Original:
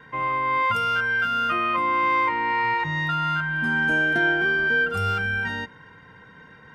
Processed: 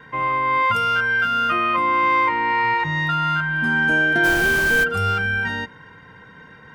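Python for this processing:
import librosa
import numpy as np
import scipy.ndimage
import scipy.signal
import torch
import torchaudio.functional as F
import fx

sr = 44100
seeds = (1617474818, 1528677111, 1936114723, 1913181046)

y = fx.dmg_noise_colour(x, sr, seeds[0], colour='pink', level_db=-32.0, at=(4.23, 4.83), fade=0.02)
y = y * librosa.db_to_amplitude(3.5)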